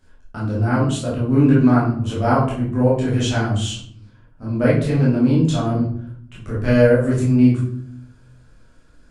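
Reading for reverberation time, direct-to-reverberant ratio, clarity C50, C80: 0.60 s, -8.5 dB, 2.5 dB, 8.5 dB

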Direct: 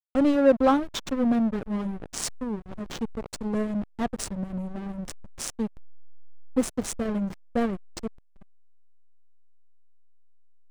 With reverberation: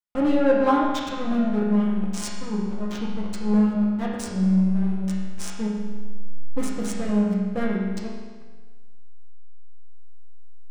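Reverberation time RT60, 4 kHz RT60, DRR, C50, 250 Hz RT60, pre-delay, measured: 1.4 s, 1.3 s, -5.5 dB, 0.5 dB, 1.4 s, 5 ms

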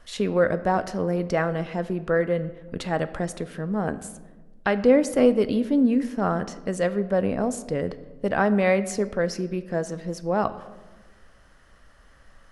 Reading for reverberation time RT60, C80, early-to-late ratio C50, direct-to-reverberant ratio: 1.3 s, 16.5 dB, 14.5 dB, 12.0 dB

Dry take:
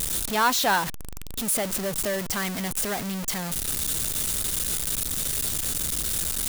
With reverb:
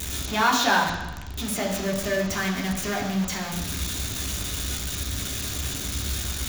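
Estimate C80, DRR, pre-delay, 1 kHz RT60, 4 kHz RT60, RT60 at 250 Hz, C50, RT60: 7.5 dB, -2.0 dB, 3 ms, 1.1 s, 1.1 s, 0.95 s, 5.0 dB, 1.0 s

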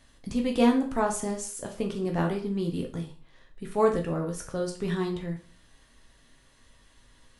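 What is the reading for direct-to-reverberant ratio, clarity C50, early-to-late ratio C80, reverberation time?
1.0 dB, 9.5 dB, 14.5 dB, 0.40 s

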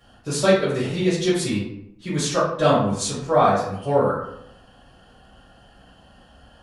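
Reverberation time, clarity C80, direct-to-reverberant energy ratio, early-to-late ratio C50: 0.75 s, 6.0 dB, -11.0 dB, 2.0 dB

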